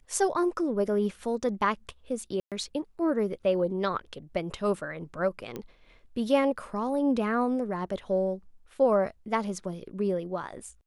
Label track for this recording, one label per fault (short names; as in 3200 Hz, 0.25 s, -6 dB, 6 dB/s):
2.400000	2.520000	gap 0.117 s
5.560000	5.560000	pop -22 dBFS